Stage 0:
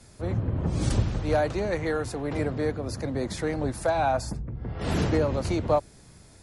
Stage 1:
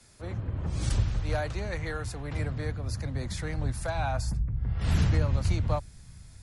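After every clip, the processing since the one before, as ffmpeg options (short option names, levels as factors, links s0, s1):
-filter_complex "[0:a]asubboost=boost=8:cutoff=130,acrossover=split=180|1100[s0][s1][s2];[s2]acontrast=65[s3];[s0][s1][s3]amix=inputs=3:normalize=0,volume=0.376"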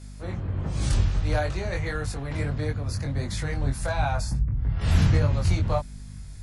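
-af "aeval=exprs='val(0)+0.00501*(sin(2*PI*50*n/s)+sin(2*PI*2*50*n/s)/2+sin(2*PI*3*50*n/s)/3+sin(2*PI*4*50*n/s)/4+sin(2*PI*5*50*n/s)/5)':c=same,flanger=delay=20:depth=2.2:speed=1.5,volume=2.24"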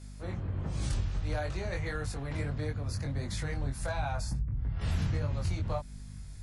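-af "acompressor=threshold=0.0562:ratio=2.5,volume=0.596"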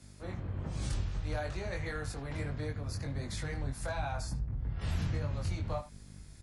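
-filter_complex "[0:a]acrossover=split=200|590|5000[s0][s1][s2][s3];[s0]aeval=exprs='sgn(val(0))*max(abs(val(0))-0.00376,0)':c=same[s4];[s2]aecho=1:1:77:0.266[s5];[s4][s1][s5][s3]amix=inputs=4:normalize=0,volume=0.794"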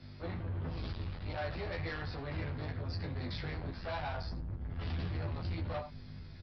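-filter_complex "[0:a]aresample=11025,asoftclip=type=tanh:threshold=0.0106,aresample=44100,asplit=2[s0][s1];[s1]adelay=12,volume=0.668[s2];[s0][s2]amix=inputs=2:normalize=0,volume=1.41"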